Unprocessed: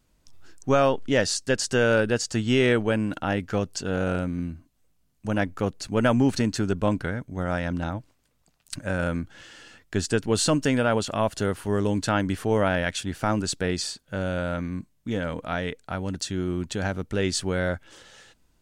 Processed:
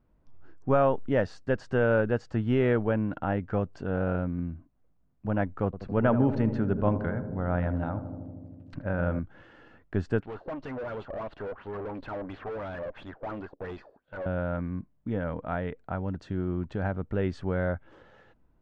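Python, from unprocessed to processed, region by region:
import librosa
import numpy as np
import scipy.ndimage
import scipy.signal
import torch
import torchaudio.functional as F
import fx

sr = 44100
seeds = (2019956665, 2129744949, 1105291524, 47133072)

y = fx.chain(x, sr, fx.lowpass(hz=5800.0, slope=12),
    fx.echo_filtered(ms=79, feedback_pct=85, hz=1000.0, wet_db=-10.0), at=(5.65, 9.19))
y = fx.chain(y, sr, fx.filter_lfo_lowpass(shape='sine', hz=2.9, low_hz=500.0, high_hz=4100.0, q=5.0),
    fx.bass_treble(bass_db=-12, treble_db=7),
    fx.tube_stage(drive_db=32.0, bias=0.65), at=(10.2, 14.26))
y = fx.dynamic_eq(y, sr, hz=320.0, q=0.81, threshold_db=-35.0, ratio=4.0, max_db=-4)
y = scipy.signal.sosfilt(scipy.signal.butter(2, 1200.0, 'lowpass', fs=sr, output='sos'), y)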